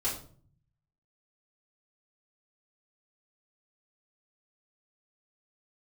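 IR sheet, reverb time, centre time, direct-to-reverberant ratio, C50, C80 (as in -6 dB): 0.50 s, 30 ms, -9.5 dB, 6.5 dB, 11.5 dB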